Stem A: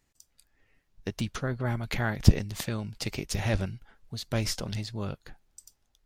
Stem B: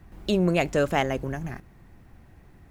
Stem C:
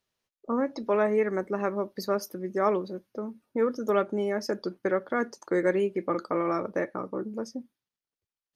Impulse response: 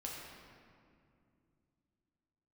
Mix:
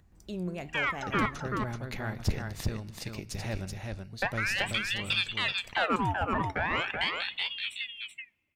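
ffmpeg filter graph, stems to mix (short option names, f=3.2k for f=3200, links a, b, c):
-filter_complex "[0:a]bandreject=f=3.2k:w=16,acontrast=78,volume=-14.5dB,asplit=3[a][b][c];[b]volume=-14dB[d];[c]volume=-3dB[e];[1:a]equalizer=f=87:w=0.52:g=6,acompressor=mode=upward:threshold=-44dB:ratio=2.5,flanger=delay=9.9:depth=7.1:regen=81:speed=1.1:shape=triangular,volume=-12.5dB[f];[2:a]aeval=exprs='val(0)*sin(2*PI*1800*n/s+1800*0.75/0.42*sin(2*PI*0.42*n/s))':c=same,adelay=250,volume=-0.5dB,asplit=3[g][h][i];[g]atrim=end=1.26,asetpts=PTS-STARTPTS,afade=t=out:st=1.256:d=0.004:c=hsin[j];[h]atrim=start=1.26:end=4.22,asetpts=PTS-STARTPTS,volume=0[k];[i]atrim=start=4.22,asetpts=PTS-STARTPTS,afade=t=in:d=0.004:c=hsin[l];[j][k][l]concat=n=3:v=0:a=1,asplit=3[m][n][o];[n]volume=-19dB[p];[o]volume=-4dB[q];[3:a]atrim=start_sample=2205[r];[d][p]amix=inputs=2:normalize=0[s];[s][r]afir=irnorm=-1:irlink=0[t];[e][q]amix=inputs=2:normalize=0,aecho=0:1:380:1[u];[a][f][m][t][u]amix=inputs=5:normalize=0,asoftclip=type=tanh:threshold=-14.5dB"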